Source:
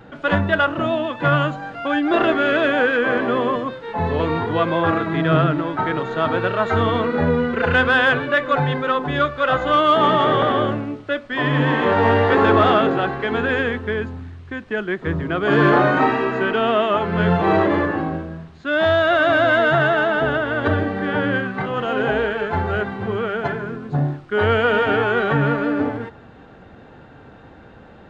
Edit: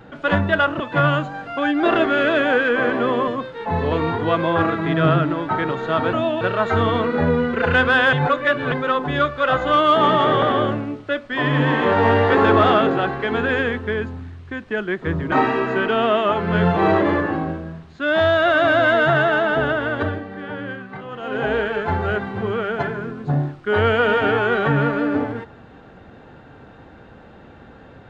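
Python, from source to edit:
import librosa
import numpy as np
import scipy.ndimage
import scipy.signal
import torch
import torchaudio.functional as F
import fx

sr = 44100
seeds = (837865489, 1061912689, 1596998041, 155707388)

y = fx.edit(x, sr, fx.move(start_s=0.8, length_s=0.28, to_s=6.41),
    fx.reverse_span(start_s=8.13, length_s=0.59),
    fx.cut(start_s=15.32, length_s=0.65),
    fx.fade_down_up(start_s=20.49, length_s=1.73, db=-9.5, fade_s=0.39), tone=tone)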